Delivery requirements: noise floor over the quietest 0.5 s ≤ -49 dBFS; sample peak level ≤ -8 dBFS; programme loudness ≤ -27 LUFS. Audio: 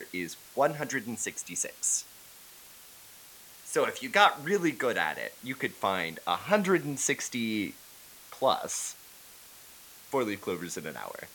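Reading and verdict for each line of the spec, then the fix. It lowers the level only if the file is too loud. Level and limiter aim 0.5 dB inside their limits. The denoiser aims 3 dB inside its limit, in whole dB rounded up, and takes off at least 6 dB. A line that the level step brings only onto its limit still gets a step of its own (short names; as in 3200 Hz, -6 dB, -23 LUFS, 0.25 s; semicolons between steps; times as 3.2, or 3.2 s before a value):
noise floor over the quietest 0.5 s -52 dBFS: OK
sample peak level -7.5 dBFS: fail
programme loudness -30.0 LUFS: OK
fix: limiter -8.5 dBFS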